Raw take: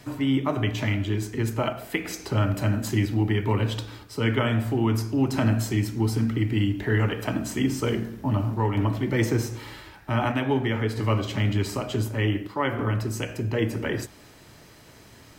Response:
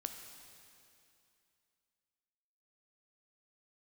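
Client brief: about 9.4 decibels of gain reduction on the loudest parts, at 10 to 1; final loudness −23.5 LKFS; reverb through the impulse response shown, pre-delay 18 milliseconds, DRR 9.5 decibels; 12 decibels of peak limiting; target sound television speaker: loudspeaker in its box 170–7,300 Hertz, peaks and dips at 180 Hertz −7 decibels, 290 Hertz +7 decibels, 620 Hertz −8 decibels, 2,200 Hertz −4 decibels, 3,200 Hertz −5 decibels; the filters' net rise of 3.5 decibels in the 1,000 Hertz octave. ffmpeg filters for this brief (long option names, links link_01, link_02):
-filter_complex "[0:a]equalizer=frequency=1000:width_type=o:gain=5.5,acompressor=threshold=-27dB:ratio=10,alimiter=level_in=3dB:limit=-24dB:level=0:latency=1,volume=-3dB,asplit=2[link_01][link_02];[1:a]atrim=start_sample=2205,adelay=18[link_03];[link_02][link_03]afir=irnorm=-1:irlink=0,volume=-7.5dB[link_04];[link_01][link_04]amix=inputs=2:normalize=0,highpass=frequency=170:width=0.5412,highpass=frequency=170:width=1.3066,equalizer=frequency=180:width_type=q:width=4:gain=-7,equalizer=frequency=290:width_type=q:width=4:gain=7,equalizer=frequency=620:width_type=q:width=4:gain=-8,equalizer=frequency=2200:width_type=q:width=4:gain=-4,equalizer=frequency=3200:width_type=q:width=4:gain=-5,lowpass=frequency=7300:width=0.5412,lowpass=frequency=7300:width=1.3066,volume=12.5dB"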